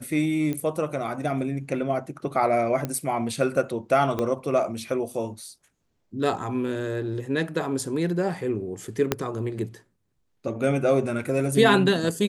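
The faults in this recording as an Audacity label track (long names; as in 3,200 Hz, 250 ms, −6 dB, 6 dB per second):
0.530000	0.530000	click −17 dBFS
2.850000	2.850000	click −14 dBFS
4.190000	4.190000	click −14 dBFS
9.120000	9.120000	click −6 dBFS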